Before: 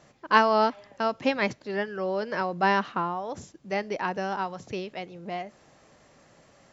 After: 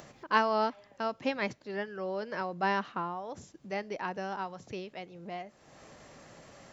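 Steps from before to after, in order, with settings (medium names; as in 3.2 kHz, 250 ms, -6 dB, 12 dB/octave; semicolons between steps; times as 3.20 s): upward compressor, threshold -35 dBFS; trim -6.5 dB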